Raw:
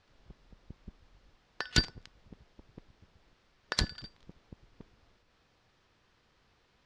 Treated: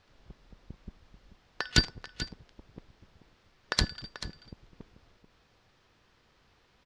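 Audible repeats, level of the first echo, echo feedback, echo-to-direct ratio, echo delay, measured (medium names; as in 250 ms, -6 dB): 1, -13.0 dB, no regular repeats, -13.0 dB, 437 ms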